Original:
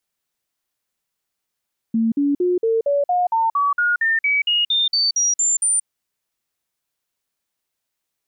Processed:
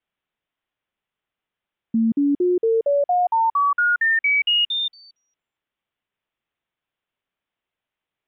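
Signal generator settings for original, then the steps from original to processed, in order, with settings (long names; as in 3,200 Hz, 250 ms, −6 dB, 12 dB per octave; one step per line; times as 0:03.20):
stepped sweep 226 Hz up, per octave 3, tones 17, 0.18 s, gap 0.05 s −15 dBFS
Butterworth low-pass 3,500 Hz 72 dB per octave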